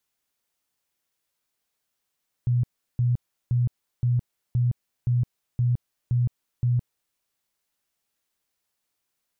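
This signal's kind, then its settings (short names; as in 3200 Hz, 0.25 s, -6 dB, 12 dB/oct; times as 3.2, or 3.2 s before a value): tone bursts 122 Hz, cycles 20, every 0.52 s, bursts 9, -18.5 dBFS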